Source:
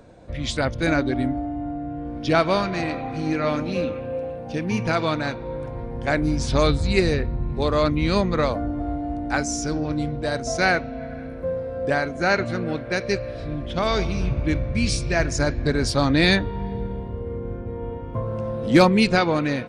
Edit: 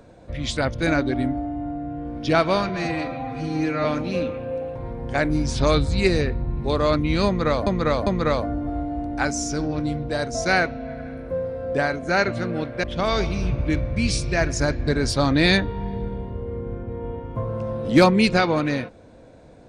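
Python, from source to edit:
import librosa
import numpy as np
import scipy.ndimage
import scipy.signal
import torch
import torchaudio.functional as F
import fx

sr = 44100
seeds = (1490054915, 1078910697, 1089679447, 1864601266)

y = fx.edit(x, sr, fx.stretch_span(start_s=2.69, length_s=0.77, factor=1.5),
    fx.cut(start_s=4.37, length_s=1.31),
    fx.repeat(start_s=8.19, length_s=0.4, count=3),
    fx.cut(start_s=12.96, length_s=0.66), tone=tone)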